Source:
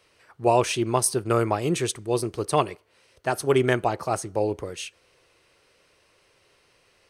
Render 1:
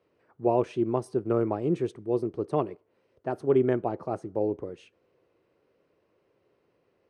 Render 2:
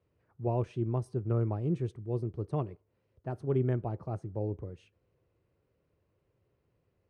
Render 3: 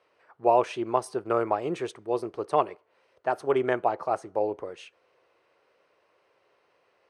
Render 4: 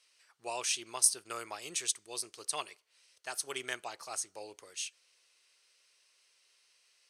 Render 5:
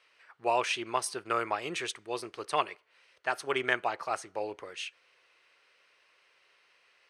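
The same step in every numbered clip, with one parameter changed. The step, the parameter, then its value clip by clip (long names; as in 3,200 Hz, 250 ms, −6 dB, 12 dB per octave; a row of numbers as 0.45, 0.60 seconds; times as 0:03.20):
resonant band-pass, frequency: 280, 100, 750, 6,800, 2,000 Hertz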